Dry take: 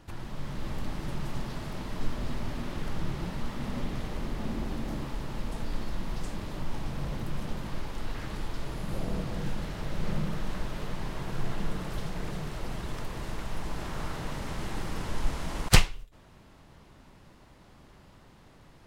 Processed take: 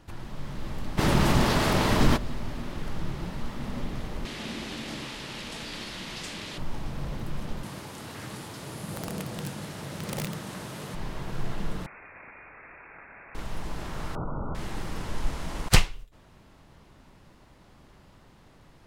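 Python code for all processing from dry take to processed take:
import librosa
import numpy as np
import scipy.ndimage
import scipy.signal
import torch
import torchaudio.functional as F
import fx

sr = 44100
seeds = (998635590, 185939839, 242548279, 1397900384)

y = fx.spec_clip(x, sr, under_db=15, at=(0.97, 2.16), fade=0.02)
y = fx.env_flatten(y, sr, amount_pct=50, at=(0.97, 2.16), fade=0.02)
y = fx.chain(y, sr, fx.cvsd(bps=64000),
    fx.weighting(curve='D'), at=(4.25, 6.58))
y = fx.chain(y, sr, fx.highpass(hz=94.0, slope=24),
    fx.peak_eq(hz=10000.0, db=10.0, octaves=1.3),
    fx.overflow_wrap(gain_db=25.5), at=(7.63, 10.95))
y = fx.chain(y, sr, fx.highpass(hz=1300.0, slope=6),
    fx.freq_invert(carrier_hz=2600), at=(11.86, 13.35))
y = fx.chain(y, sr, fx.brickwall_lowpass(high_hz=1500.0),
    fx.env_flatten(amount_pct=70), at=(14.15, 14.55))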